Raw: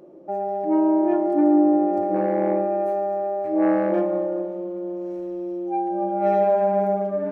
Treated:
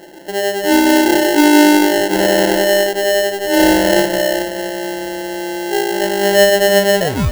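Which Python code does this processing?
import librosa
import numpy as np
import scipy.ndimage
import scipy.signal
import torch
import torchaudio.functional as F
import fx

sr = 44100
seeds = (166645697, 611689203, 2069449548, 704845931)

y = fx.tape_stop_end(x, sr, length_s=0.32)
y = fx.echo_split(y, sr, split_hz=560.0, low_ms=109, high_ms=683, feedback_pct=52, wet_db=-16.0)
y = fx.sample_hold(y, sr, seeds[0], rate_hz=1200.0, jitter_pct=0)
y = y * librosa.db_to_amplitude(8.0)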